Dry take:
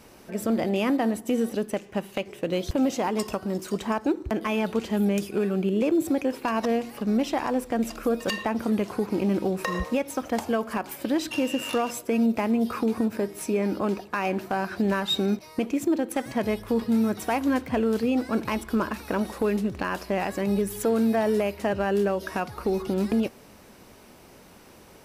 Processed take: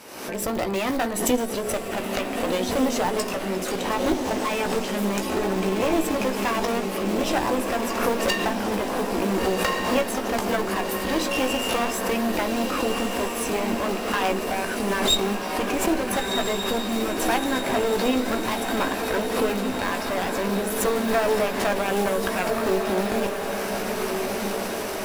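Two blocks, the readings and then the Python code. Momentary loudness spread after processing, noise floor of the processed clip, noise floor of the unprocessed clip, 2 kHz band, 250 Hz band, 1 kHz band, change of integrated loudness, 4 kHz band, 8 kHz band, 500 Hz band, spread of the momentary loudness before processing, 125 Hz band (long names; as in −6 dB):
4 LU, −30 dBFS, −51 dBFS, +6.5 dB, −1.5 dB, +5.0 dB, +2.0 dB, +8.0 dB, +9.5 dB, +2.5 dB, 5 LU, −1.0 dB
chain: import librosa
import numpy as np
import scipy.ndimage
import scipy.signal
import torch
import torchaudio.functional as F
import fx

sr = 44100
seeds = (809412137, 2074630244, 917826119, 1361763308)

p1 = fx.recorder_agc(x, sr, target_db=-26.0, rise_db_per_s=47.0, max_gain_db=30)
p2 = fx.highpass(p1, sr, hz=130.0, slope=6)
p3 = fx.low_shelf(p2, sr, hz=170.0, db=-10.5)
p4 = fx.hum_notches(p3, sr, base_hz=60, count=8)
p5 = fx.cheby_harmonics(p4, sr, harmonics=(3, 4, 7), levels_db=(-21, -12, -34), full_scale_db=-10.5)
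p6 = (np.mod(10.0 ** (26.0 / 20.0) * p5 + 1.0, 2.0) - 1.0) / 10.0 ** (26.0 / 20.0)
p7 = p5 + (p6 * 10.0 ** (-10.5 / 20.0))
p8 = fx.doubler(p7, sr, ms=16.0, db=-8)
p9 = p8 + fx.echo_diffused(p8, sr, ms=1418, feedback_pct=62, wet_db=-4.5, dry=0)
p10 = fx.pre_swell(p9, sr, db_per_s=55.0)
y = p10 * 10.0 ** (5.0 / 20.0)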